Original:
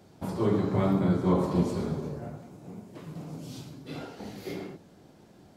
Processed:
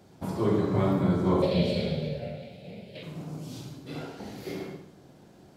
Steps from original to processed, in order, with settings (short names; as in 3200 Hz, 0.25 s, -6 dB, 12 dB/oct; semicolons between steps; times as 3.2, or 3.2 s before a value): 1.42–3.03 EQ curve 220 Hz 0 dB, 320 Hz -10 dB, 550 Hz +10 dB, 1100 Hz -16 dB, 2400 Hz +14 dB, 4200 Hz +14 dB, 6200 Hz -9 dB, 9900 Hz -5 dB; reverb, pre-delay 46 ms, DRR 5.5 dB